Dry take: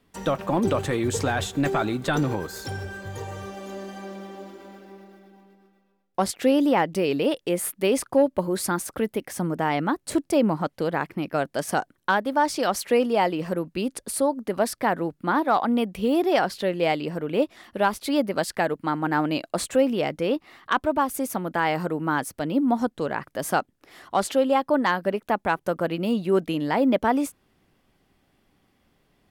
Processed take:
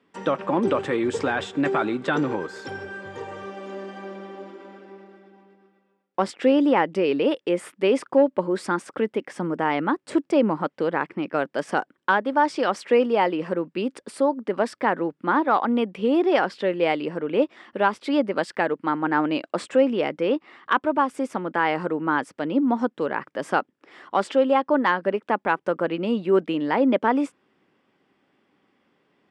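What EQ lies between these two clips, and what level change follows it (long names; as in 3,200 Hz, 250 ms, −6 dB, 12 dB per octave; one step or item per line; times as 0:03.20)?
loudspeaker in its box 250–7,400 Hz, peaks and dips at 690 Hz −6 dB, 4,200 Hz −6 dB, 6,400 Hz −8 dB
high-shelf EQ 4,000 Hz −8.5 dB
+3.5 dB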